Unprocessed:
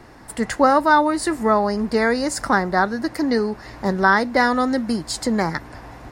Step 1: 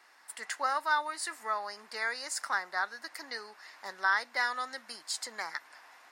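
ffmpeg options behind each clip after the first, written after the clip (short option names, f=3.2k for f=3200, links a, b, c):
-af "highpass=1.3k,volume=-8dB"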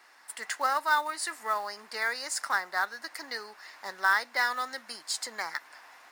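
-af "acrusher=bits=5:mode=log:mix=0:aa=0.000001,volume=3dB"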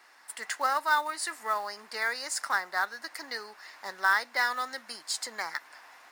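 -af anull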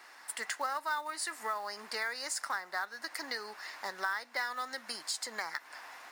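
-af "acompressor=threshold=-39dB:ratio=3,volume=3.5dB"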